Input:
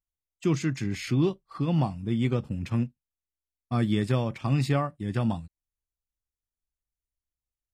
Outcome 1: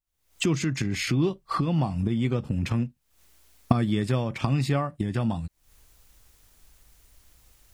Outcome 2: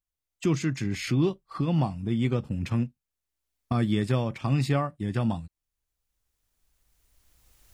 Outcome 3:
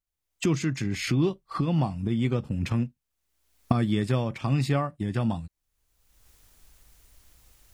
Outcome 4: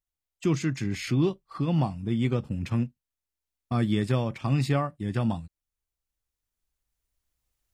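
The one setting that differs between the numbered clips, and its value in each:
recorder AGC, rising by: 87 dB/s, 14 dB/s, 35 dB/s, 5.6 dB/s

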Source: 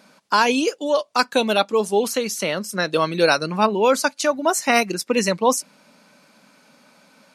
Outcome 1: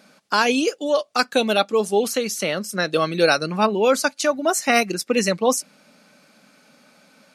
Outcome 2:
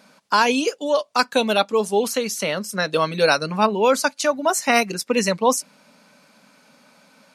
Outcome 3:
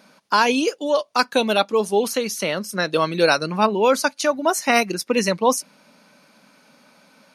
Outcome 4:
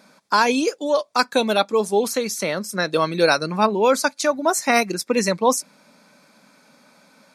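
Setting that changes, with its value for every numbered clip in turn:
band-stop, frequency: 970 Hz, 340 Hz, 7.6 kHz, 2.9 kHz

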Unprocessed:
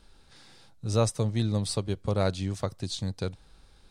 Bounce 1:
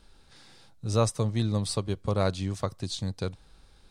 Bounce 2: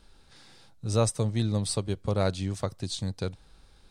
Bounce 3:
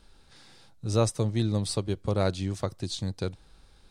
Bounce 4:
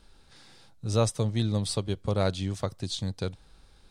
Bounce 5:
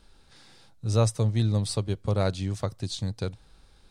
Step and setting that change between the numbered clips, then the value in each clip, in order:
dynamic bell, frequency: 1.1 kHz, 8.4 kHz, 340 Hz, 3.3 kHz, 110 Hz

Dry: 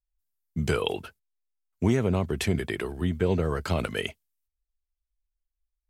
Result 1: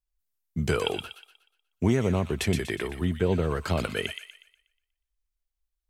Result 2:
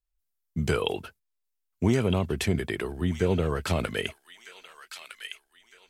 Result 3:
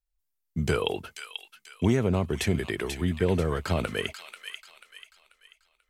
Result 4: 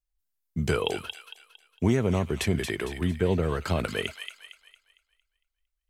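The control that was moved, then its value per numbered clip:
feedback echo behind a high-pass, time: 121 ms, 1259 ms, 488 ms, 228 ms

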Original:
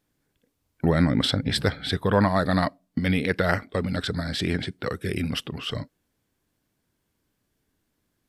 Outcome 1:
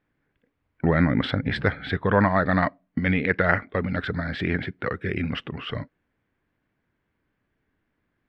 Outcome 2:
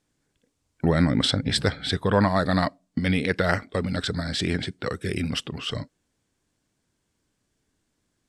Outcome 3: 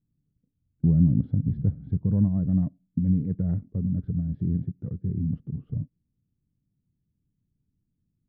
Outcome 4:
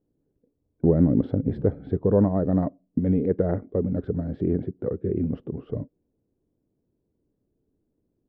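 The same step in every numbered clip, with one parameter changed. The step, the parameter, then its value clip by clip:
resonant low-pass, frequency: 2 kHz, 7.9 kHz, 160 Hz, 430 Hz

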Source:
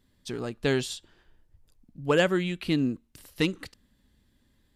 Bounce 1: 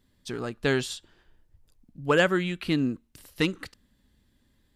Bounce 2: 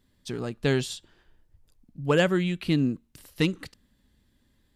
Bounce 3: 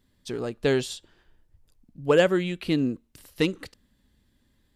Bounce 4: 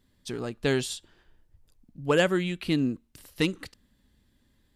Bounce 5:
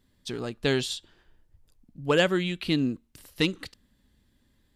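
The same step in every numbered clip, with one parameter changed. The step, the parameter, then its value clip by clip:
dynamic bell, frequency: 1.4 kHz, 150 Hz, 490 Hz, 9.9 kHz, 3.7 kHz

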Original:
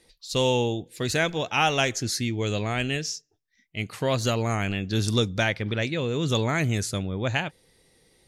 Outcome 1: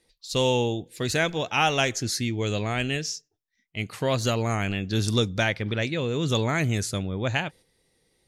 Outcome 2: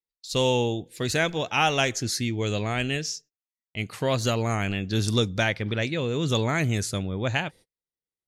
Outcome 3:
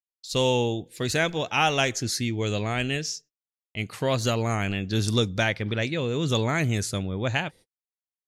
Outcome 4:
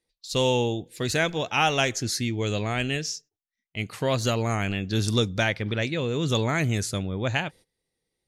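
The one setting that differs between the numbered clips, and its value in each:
gate, range: -7 dB, -40 dB, -60 dB, -20 dB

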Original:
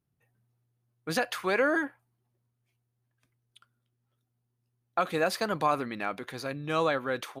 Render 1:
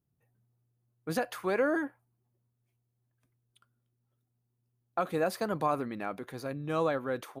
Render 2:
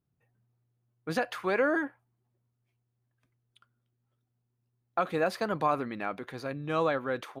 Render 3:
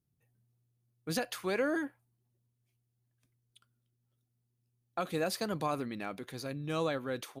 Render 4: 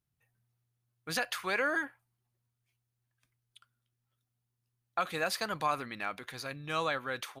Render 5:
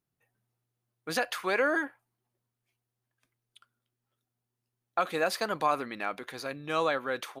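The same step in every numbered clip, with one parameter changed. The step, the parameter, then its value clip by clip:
peaking EQ, frequency: 3.4 kHz, 12 kHz, 1.3 kHz, 330 Hz, 85 Hz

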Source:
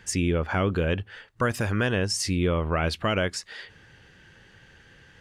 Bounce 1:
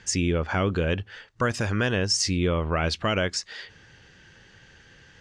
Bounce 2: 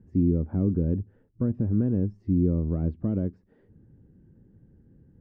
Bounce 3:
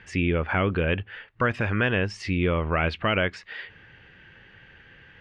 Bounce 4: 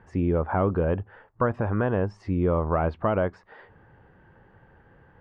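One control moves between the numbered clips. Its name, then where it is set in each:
resonant low-pass, frequency: 6.3 kHz, 260 Hz, 2.5 kHz, 940 Hz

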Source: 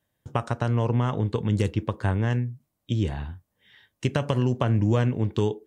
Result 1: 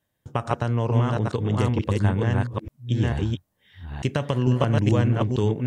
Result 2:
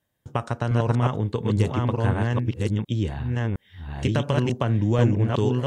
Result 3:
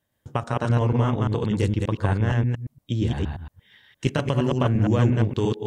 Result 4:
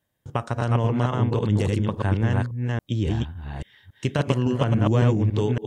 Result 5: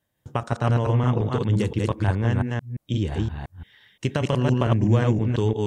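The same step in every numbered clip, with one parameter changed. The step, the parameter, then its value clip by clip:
chunks repeated in reverse, time: 447 ms, 712 ms, 116 ms, 279 ms, 173 ms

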